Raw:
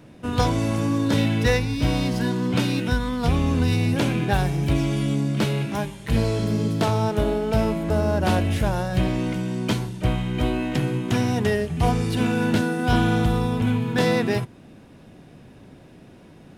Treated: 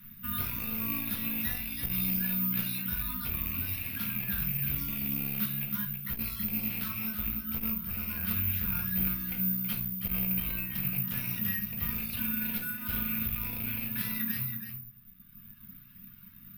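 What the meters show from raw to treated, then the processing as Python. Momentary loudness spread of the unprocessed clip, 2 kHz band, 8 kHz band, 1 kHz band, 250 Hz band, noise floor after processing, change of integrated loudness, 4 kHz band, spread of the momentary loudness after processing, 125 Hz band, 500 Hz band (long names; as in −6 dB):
4 LU, −10.0 dB, −7.5 dB, −20.5 dB, −14.5 dB, −52 dBFS, −7.5 dB, −12.0 dB, 5 LU, −16.0 dB, −30.0 dB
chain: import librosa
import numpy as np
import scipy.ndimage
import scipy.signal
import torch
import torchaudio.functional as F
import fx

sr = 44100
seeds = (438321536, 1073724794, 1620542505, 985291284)

p1 = fx.rattle_buzz(x, sr, strikes_db=-21.0, level_db=-17.0)
p2 = scipy.signal.sosfilt(scipy.signal.ellip(3, 1.0, 40, [220.0, 1200.0], 'bandstop', fs=sr, output='sos'), p1)
p3 = scipy.signal.lfilter([1.0, -0.8], [1.0], p2)
p4 = fx.dereverb_blind(p3, sr, rt60_s=1.9)
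p5 = fx.over_compress(p4, sr, threshold_db=-45.0, ratio=-1.0)
p6 = p4 + F.gain(torch.from_numpy(p5), 0.5).numpy()
p7 = 10.0 ** (-26.0 / 20.0) * (np.abs((p6 / 10.0 ** (-26.0 / 20.0) + 3.0) % 4.0 - 2.0) - 1.0)
p8 = fx.air_absorb(p7, sr, metres=240.0)
p9 = p8 + fx.echo_single(p8, sr, ms=325, db=-8.5, dry=0)
p10 = fx.room_shoebox(p9, sr, seeds[0], volume_m3=200.0, walls='furnished', distance_m=1.8)
p11 = (np.kron(p10[::3], np.eye(3)[0]) * 3)[:len(p10)]
p12 = fx.transformer_sat(p11, sr, knee_hz=300.0)
y = F.gain(torch.from_numpy(p12), -3.0).numpy()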